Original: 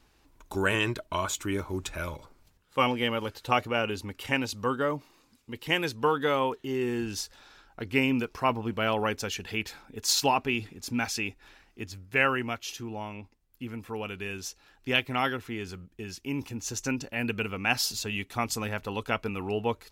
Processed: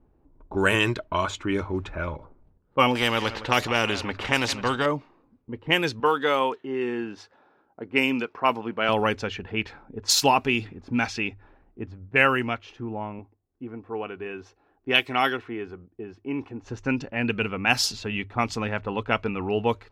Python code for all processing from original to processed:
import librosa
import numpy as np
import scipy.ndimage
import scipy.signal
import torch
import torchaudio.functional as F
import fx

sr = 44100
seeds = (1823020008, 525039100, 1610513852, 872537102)

y = fx.chain(x, sr, fx.peak_eq(hz=14000.0, db=-5.5, octaves=1.6),
    fx.echo_single(ms=164, db=-23.5),
    fx.spectral_comp(ratio=2.0), at=(2.95, 4.86))
y = fx.chain(y, sr, fx.highpass(hz=190.0, slope=12),
    fx.low_shelf(hz=450.0, db=-4.5), at=(6.0, 8.89))
y = fx.chain(y, sr, fx.highpass(hz=250.0, slope=6),
    fx.comb(ms=2.7, depth=0.32), at=(13.19, 16.63))
y = fx.env_lowpass(y, sr, base_hz=540.0, full_db=-22.0)
y = fx.hum_notches(y, sr, base_hz=50, count=2)
y = y * librosa.db_to_amplitude(5.0)